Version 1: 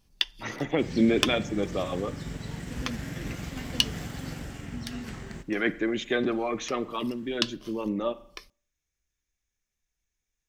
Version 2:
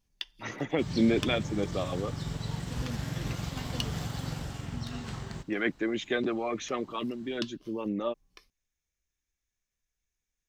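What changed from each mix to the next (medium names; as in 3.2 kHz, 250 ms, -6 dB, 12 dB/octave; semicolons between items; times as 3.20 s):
first sound -11.5 dB; second sound: add graphic EQ 125/250/1000/2000/4000 Hz +6/-4/+6/-5/+6 dB; reverb: off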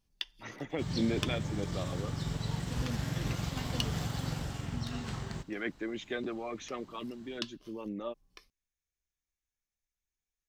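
speech -7.0 dB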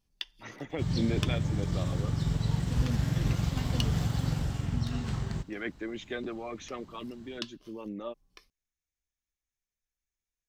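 second sound: add bass shelf 210 Hz +9 dB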